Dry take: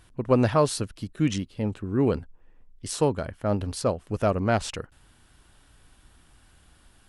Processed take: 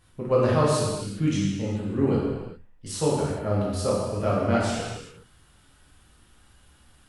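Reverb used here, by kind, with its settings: gated-style reverb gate 440 ms falling, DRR -7.5 dB; trim -7.5 dB

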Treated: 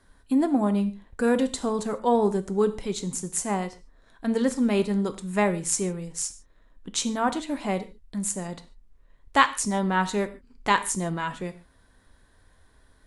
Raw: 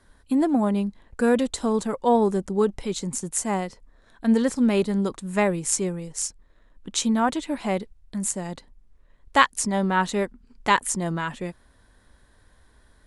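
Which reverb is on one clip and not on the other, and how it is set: gated-style reverb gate 170 ms falling, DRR 9.5 dB; trim -2 dB

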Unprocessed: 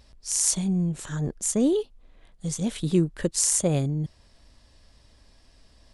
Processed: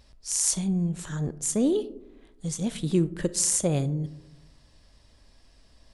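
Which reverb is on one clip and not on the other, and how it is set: algorithmic reverb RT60 0.9 s, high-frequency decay 0.25×, pre-delay 0 ms, DRR 15 dB; trim -1.5 dB

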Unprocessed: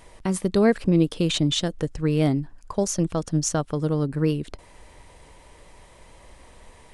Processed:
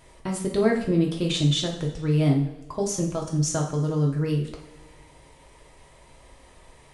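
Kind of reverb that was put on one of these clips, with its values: two-slope reverb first 0.49 s, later 1.7 s, from -17 dB, DRR -0.5 dB; trim -5 dB

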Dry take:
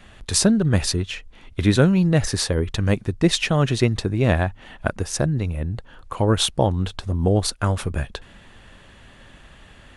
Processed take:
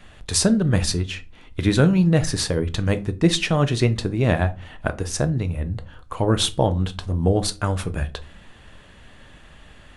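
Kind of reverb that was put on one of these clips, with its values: simulated room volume 170 m³, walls furnished, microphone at 0.47 m; trim -1 dB

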